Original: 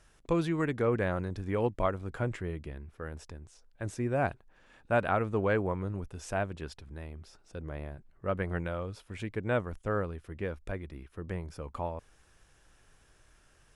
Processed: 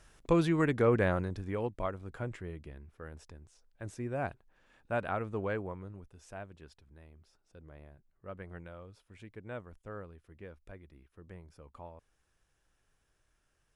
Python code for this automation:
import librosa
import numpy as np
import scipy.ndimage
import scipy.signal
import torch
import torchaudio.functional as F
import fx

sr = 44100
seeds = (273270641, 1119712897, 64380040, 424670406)

y = fx.gain(x, sr, db=fx.line((1.09, 2.0), (1.67, -6.0), (5.45, -6.0), (6.08, -13.0)))